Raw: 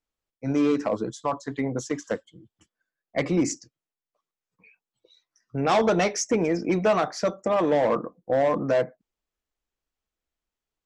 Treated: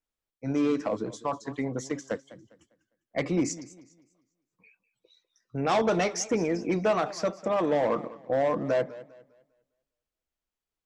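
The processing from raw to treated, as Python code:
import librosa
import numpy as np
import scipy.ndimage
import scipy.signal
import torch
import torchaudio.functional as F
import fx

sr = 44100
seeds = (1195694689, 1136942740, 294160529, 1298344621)

y = fx.echo_warbled(x, sr, ms=201, feedback_pct=32, rate_hz=2.8, cents=115, wet_db=-17.5)
y = y * 10.0 ** (-3.5 / 20.0)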